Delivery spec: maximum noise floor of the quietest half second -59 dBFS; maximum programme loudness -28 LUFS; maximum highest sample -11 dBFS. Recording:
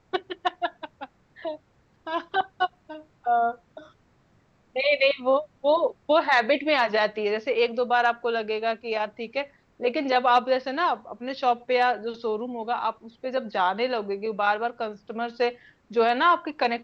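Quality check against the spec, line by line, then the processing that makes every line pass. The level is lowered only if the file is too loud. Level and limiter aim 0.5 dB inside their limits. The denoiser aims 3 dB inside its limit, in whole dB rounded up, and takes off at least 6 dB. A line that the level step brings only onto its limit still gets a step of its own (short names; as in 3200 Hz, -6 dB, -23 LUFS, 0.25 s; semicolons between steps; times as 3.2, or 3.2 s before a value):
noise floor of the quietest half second -62 dBFS: OK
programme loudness -25.0 LUFS: fail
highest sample -9.0 dBFS: fail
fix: gain -3.5 dB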